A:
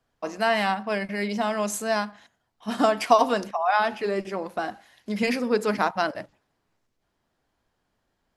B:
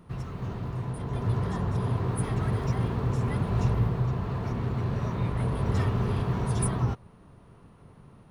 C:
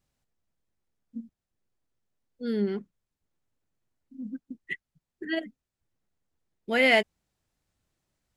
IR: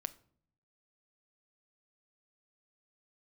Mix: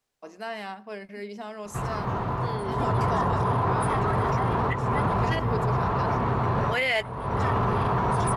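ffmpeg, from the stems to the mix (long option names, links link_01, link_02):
-filter_complex "[0:a]equalizer=frequency=410:width_type=o:width=0.27:gain=7.5,volume=-12.5dB[link_01];[1:a]equalizer=frequency=970:width_type=o:width=2.1:gain=14.5,adelay=1650,volume=1.5dB[link_02];[2:a]highpass=540,volume=1dB,asplit=2[link_03][link_04];[link_04]apad=whole_len=439061[link_05];[link_02][link_05]sidechaincompress=threshold=-35dB:ratio=8:attack=22:release=416[link_06];[link_01][link_06][link_03]amix=inputs=3:normalize=0,alimiter=limit=-16.5dB:level=0:latency=1:release=12"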